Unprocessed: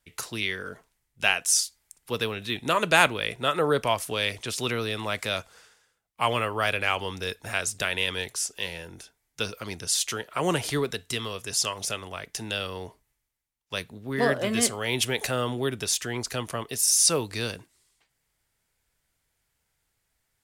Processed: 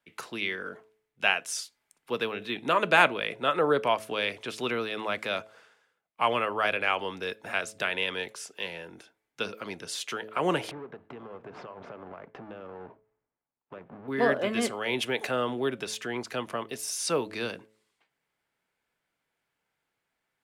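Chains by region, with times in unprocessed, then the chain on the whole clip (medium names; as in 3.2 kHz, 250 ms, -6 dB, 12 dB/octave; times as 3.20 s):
10.71–14.08 s: square wave that keeps the level + low-pass 1.2 kHz + compression 12:1, threshold -37 dBFS
whole clip: three-band isolator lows -21 dB, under 160 Hz, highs -14 dB, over 3.3 kHz; band-stop 1.9 kHz, Q 23; de-hum 108.5 Hz, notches 6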